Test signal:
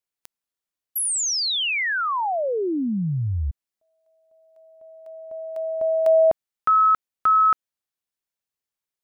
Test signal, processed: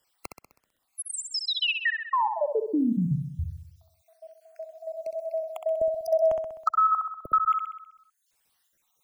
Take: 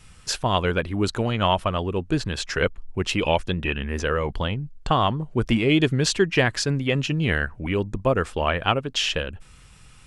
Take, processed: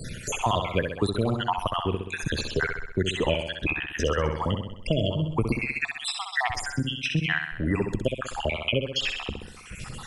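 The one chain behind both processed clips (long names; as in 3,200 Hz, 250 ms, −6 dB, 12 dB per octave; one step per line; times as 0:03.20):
time-frequency cells dropped at random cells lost 66%
flutter between parallel walls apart 11 metres, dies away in 0.61 s
multiband upward and downward compressor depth 70%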